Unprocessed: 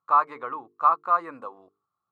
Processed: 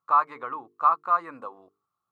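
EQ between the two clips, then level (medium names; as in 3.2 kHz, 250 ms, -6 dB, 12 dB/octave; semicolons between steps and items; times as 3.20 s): dynamic bell 450 Hz, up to -5 dB, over -37 dBFS, Q 1.1; 0.0 dB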